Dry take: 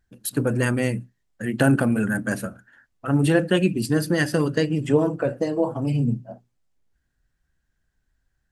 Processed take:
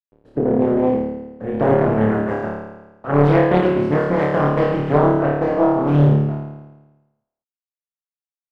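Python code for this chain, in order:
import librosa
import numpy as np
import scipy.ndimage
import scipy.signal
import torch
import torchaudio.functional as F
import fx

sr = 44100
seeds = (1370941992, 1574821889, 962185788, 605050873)

y = fx.spec_flatten(x, sr, power=0.54)
y = fx.quant_dither(y, sr, seeds[0], bits=6, dither='none')
y = fx.filter_sweep_lowpass(y, sr, from_hz=410.0, to_hz=1000.0, start_s=0.07, end_s=2.6, q=1.3)
y = fx.room_flutter(y, sr, wall_m=4.7, rt60_s=1.1)
y = fx.doppler_dist(y, sr, depth_ms=0.68)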